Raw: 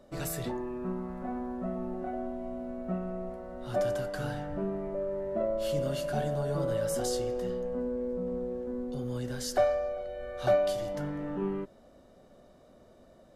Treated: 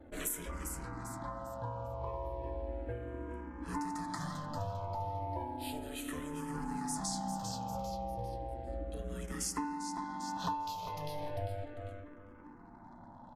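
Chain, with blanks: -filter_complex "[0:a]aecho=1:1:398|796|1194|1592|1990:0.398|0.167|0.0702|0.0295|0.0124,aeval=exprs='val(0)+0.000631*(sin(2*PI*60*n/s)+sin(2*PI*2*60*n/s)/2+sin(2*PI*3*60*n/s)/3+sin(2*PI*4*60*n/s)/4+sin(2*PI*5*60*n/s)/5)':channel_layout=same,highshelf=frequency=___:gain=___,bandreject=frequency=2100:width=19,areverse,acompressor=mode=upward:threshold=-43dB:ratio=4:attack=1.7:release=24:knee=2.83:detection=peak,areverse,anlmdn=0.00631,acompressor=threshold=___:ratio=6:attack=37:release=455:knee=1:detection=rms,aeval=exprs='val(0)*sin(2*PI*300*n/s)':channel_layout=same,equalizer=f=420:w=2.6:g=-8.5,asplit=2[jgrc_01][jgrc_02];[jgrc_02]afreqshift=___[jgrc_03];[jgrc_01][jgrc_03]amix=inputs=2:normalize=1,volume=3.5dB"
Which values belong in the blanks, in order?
4700, 7.5, -32dB, -0.34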